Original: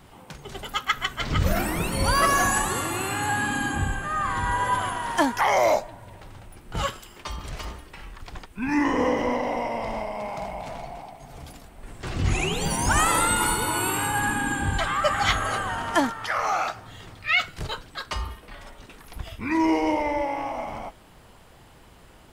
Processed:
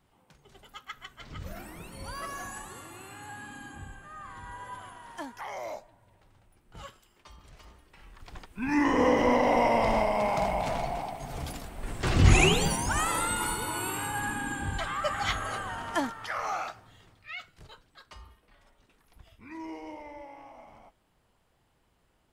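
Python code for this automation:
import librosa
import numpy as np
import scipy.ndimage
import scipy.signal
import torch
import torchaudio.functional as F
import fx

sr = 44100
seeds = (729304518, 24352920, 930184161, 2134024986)

y = fx.gain(x, sr, db=fx.line((7.65, -18.0), (8.33, -6.5), (9.68, 5.0), (12.47, 5.0), (12.88, -7.5), (16.54, -7.5), (17.35, -19.0)))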